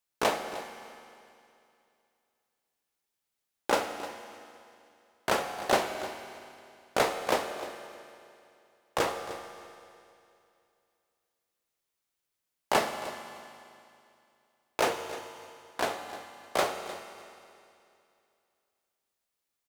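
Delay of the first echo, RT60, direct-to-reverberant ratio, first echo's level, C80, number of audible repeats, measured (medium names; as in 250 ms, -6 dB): 305 ms, 2.6 s, 6.0 dB, -15.5 dB, 8.0 dB, 1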